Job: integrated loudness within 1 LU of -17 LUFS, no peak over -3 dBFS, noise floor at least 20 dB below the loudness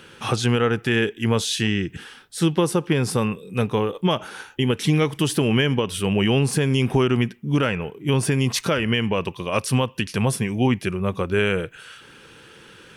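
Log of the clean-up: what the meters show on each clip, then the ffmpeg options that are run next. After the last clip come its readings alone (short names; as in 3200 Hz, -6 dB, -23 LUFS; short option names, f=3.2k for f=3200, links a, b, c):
loudness -22.0 LUFS; peak -10.0 dBFS; loudness target -17.0 LUFS
-> -af "volume=5dB"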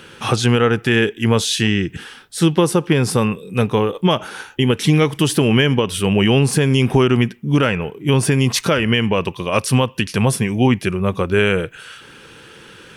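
loudness -17.0 LUFS; peak -5.0 dBFS; noise floor -43 dBFS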